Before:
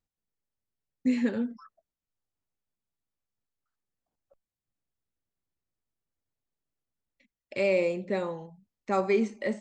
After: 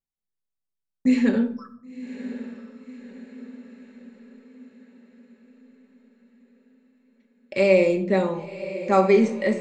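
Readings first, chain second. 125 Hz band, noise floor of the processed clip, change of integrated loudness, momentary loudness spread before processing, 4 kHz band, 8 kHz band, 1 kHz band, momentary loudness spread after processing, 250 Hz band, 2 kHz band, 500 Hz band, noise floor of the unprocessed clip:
+10.0 dB, -83 dBFS, +7.0 dB, 12 LU, +7.0 dB, no reading, +8.5 dB, 23 LU, +8.0 dB, +6.5 dB, +8.0 dB, under -85 dBFS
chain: gate -58 dBFS, range -15 dB; echo that smears into a reverb 1045 ms, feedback 53%, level -13 dB; simulated room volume 740 m³, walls furnished, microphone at 1.1 m; trim +6 dB

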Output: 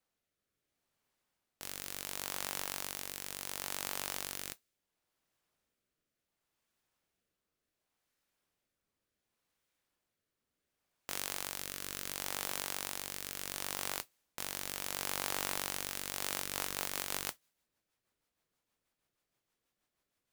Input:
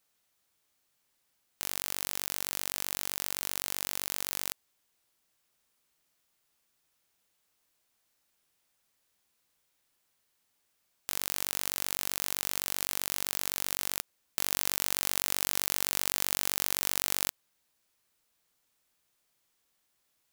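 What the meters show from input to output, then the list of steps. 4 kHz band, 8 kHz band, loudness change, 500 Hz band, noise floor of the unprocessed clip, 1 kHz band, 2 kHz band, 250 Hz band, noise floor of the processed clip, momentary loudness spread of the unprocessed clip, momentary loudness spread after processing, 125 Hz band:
-5.5 dB, -7.0 dB, -7.0 dB, -1.5 dB, -76 dBFS, -2.0 dB, -3.5 dB, -2.5 dB, under -85 dBFS, 6 LU, 7 LU, -3.5 dB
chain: rotary cabinet horn 0.7 Hz, later 6.3 Hz, at 15.97 s; modulation noise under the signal 11 dB; saturation -15.5 dBFS, distortion -8 dB; tape noise reduction on one side only decoder only

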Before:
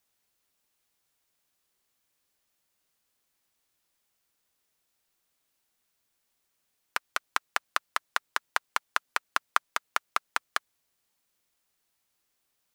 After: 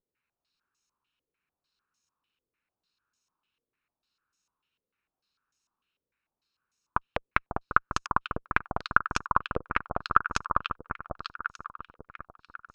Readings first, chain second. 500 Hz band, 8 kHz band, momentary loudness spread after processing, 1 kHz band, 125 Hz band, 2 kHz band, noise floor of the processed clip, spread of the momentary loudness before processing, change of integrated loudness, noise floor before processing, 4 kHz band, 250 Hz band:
+8.0 dB, -4.5 dB, 21 LU, +5.0 dB, no reading, +2.0 dB, under -85 dBFS, 4 LU, +2.5 dB, -78 dBFS, -4.0 dB, +16.5 dB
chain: comb filter that takes the minimum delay 0.75 ms; waveshaping leveller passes 1; echo whose repeats swap between lows and highs 547 ms, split 1.3 kHz, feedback 57%, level -4 dB; step-sequenced low-pass 6.7 Hz 500–6300 Hz; trim -3 dB

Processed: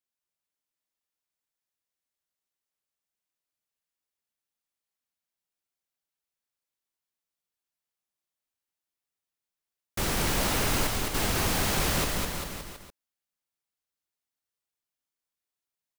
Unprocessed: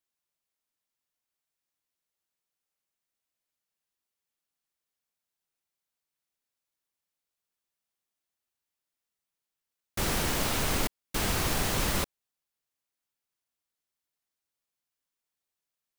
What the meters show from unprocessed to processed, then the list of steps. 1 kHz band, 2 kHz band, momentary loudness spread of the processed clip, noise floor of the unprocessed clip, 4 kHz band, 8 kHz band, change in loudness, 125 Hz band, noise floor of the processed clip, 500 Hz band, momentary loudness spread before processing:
+2.5 dB, +2.5 dB, 12 LU, under -85 dBFS, +2.5 dB, +2.5 dB, +2.0 dB, +2.5 dB, under -85 dBFS, +2.5 dB, 5 LU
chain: bouncing-ball echo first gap 210 ms, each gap 0.9×, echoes 5; waveshaping leveller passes 1; trim -3 dB

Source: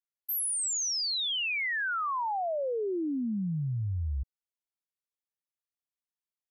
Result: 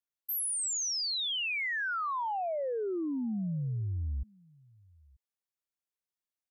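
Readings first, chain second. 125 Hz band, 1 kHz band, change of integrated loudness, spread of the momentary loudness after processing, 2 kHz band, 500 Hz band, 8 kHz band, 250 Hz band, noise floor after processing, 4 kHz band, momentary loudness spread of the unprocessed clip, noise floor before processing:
-2.0 dB, -2.0 dB, -2.0 dB, 6 LU, -2.0 dB, -2.0 dB, -2.0 dB, -2.0 dB, under -85 dBFS, -2.0 dB, 6 LU, under -85 dBFS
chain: echo from a far wall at 160 m, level -27 dB; trim -2 dB

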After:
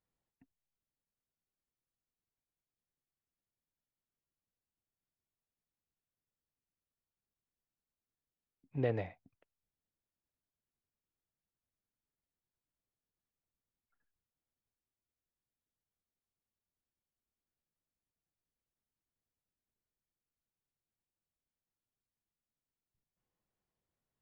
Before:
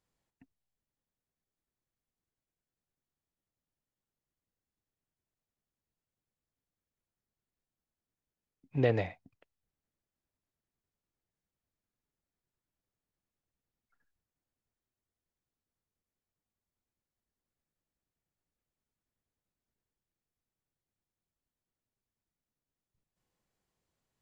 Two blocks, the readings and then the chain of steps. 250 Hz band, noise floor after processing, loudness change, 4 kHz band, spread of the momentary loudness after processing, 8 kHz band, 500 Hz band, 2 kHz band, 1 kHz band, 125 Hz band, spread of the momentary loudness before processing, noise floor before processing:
-5.5 dB, under -85 dBFS, -6.0 dB, -10.0 dB, 11 LU, no reading, -5.5 dB, -8.0 dB, -6.0 dB, -5.5 dB, 11 LU, under -85 dBFS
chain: treble shelf 3.9 kHz -11.5 dB; trim -5.5 dB

